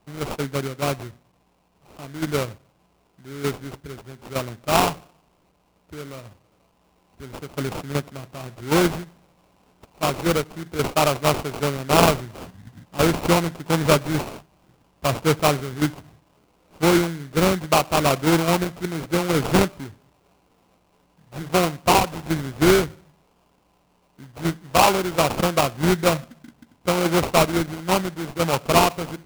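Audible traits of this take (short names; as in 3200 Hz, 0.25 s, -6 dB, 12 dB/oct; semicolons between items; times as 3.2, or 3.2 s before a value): aliases and images of a low sample rate 1800 Hz, jitter 20%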